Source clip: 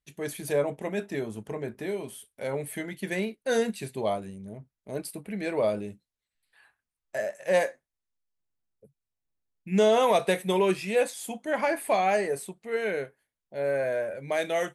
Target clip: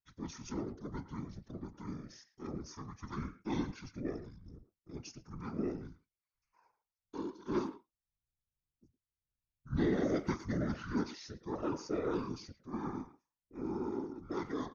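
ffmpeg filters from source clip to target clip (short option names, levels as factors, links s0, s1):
-filter_complex "[0:a]asetrate=24750,aresample=44100,atempo=1.7818,asplit=2[s0][s1];[s1]adelay=110,highpass=300,lowpass=3400,asoftclip=type=hard:threshold=0.0891,volume=0.224[s2];[s0][s2]amix=inputs=2:normalize=0,afftfilt=real='hypot(re,im)*cos(2*PI*random(0))':imag='hypot(re,im)*sin(2*PI*random(1))':win_size=512:overlap=0.75,volume=0.596"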